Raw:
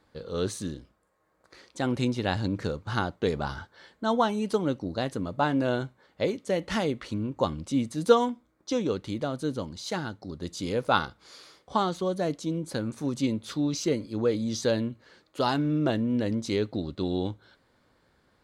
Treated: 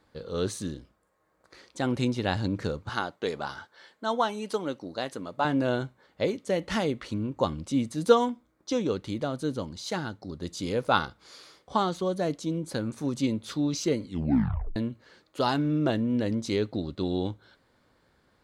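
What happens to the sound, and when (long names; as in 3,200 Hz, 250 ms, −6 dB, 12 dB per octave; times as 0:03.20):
0:02.89–0:05.45: high-pass filter 470 Hz 6 dB per octave
0:14.01: tape stop 0.75 s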